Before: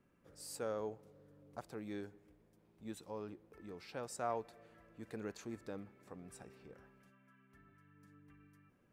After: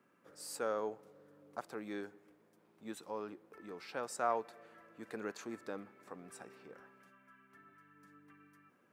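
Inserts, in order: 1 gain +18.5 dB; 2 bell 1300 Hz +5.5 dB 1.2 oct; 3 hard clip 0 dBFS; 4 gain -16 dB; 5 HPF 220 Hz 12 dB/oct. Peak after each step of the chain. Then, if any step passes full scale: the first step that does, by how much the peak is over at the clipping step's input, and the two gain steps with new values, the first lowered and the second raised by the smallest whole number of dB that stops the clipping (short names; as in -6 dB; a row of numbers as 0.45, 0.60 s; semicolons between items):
-6.5, -4.0, -4.0, -20.0, -20.0 dBFS; no overload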